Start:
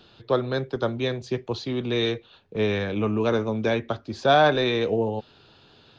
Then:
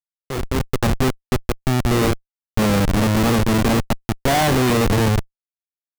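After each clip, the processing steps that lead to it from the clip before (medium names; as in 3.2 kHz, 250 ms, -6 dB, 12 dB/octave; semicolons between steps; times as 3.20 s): small resonant body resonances 210/790/2500 Hz, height 9 dB, ringing for 20 ms; Schmitt trigger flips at -19 dBFS; level rider gain up to 11.5 dB; trim -6 dB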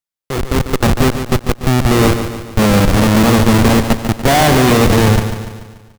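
feedback delay 145 ms, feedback 51%, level -9 dB; trim +6 dB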